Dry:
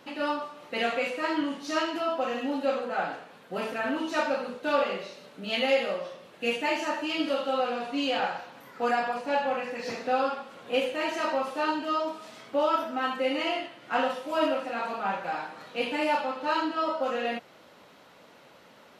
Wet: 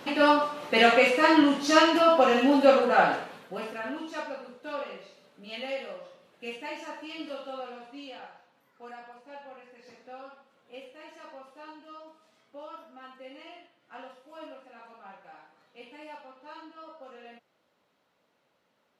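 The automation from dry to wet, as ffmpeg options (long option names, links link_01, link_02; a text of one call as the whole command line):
ffmpeg -i in.wav -af "volume=8.5dB,afade=type=out:start_time=3.2:duration=0.35:silence=0.251189,afade=type=out:start_time=3.55:duration=0.8:silence=0.473151,afade=type=out:start_time=7.44:duration=0.86:silence=0.375837" out.wav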